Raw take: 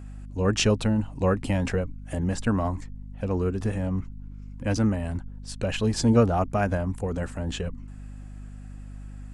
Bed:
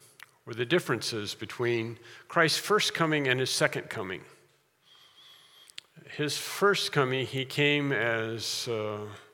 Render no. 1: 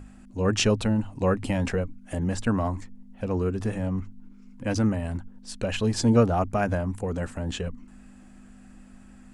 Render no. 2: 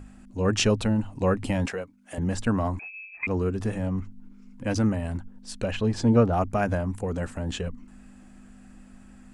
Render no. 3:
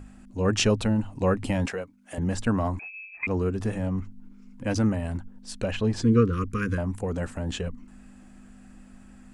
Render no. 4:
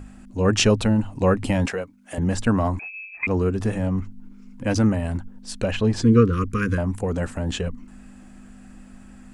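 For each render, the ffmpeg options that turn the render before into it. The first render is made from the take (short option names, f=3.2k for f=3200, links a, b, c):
-af "bandreject=f=50:t=h:w=6,bandreject=f=100:t=h:w=6,bandreject=f=150:t=h:w=6"
-filter_complex "[0:a]asettb=1/sr,asplit=3[a][b][c];[a]atrim=end=1.664[d];[b]atrim=start=1.66:end=2.18,asetpts=PTS-STARTPTS,afade=t=in:d=0.004:c=qsin,afade=t=out:st=0.516:d=0.004:c=qsin,highpass=f=610:p=1[e];[c]atrim=start=2.176[f];[d][e]acrossfade=d=0.004:c1=hsin:c2=qsin[g];[g][f]acrossfade=d=0.004:c1=qsin:c2=hsin,asettb=1/sr,asplit=3[h][i][j];[h]atrim=end=2.794[k];[i]atrim=start=2.79:end=3.27,asetpts=PTS-STARTPTS,afade=t=in:d=0.004:c=qsin,afade=t=out:st=0.476:d=0.004:c=qsin,lowpass=f=2.2k:t=q:w=0.5098,lowpass=f=2.2k:t=q:w=0.6013,lowpass=f=2.2k:t=q:w=0.9,lowpass=f=2.2k:t=q:w=2.563,afreqshift=-2600[l];[j]atrim=start=3.266[m];[k][l]acrossfade=d=0.004:c1=hsin:c2=qsin[n];[n][m]acrossfade=d=0.004:c1=qsin:c2=hsin,asettb=1/sr,asplit=3[o][p][q];[o]atrim=end=5.714[r];[p]atrim=start=5.71:end=6.33,asetpts=PTS-STARTPTS,afade=t=in:d=0.004:c=qsin,afade=t=out:st=0.616:d=0.004:c=qsin,lowpass=f=2.6k:p=1[s];[q]atrim=start=6.326[t];[r][s]acrossfade=d=0.004:c1=hsin:c2=qsin[u];[u][t]acrossfade=d=0.004:c1=qsin:c2=hsin"
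-filter_complex "[0:a]asettb=1/sr,asplit=3[a][b][c];[a]atrim=end=6.024[d];[b]atrim=start=6.02:end=6.78,asetpts=PTS-STARTPTS,afade=t=in:d=0.004:c=qsin,afade=t=out:st=0.756:d=0.004:c=qsin,asuperstop=centerf=730:order=12:qfactor=1.3[e];[c]atrim=start=6.776[f];[d][e]acrossfade=d=0.004:c1=hsin:c2=qsin[g];[g][f]acrossfade=d=0.004:c1=qsin:c2=hsin"
-af "volume=4.5dB"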